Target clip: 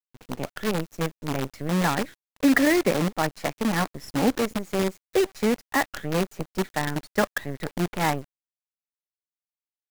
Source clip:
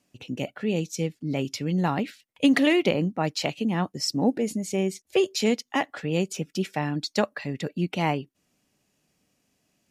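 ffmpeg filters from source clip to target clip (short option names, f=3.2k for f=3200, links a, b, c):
-af "highshelf=f=2.3k:t=q:w=3:g=-9.5,acrusher=bits=5:dc=4:mix=0:aa=0.000001"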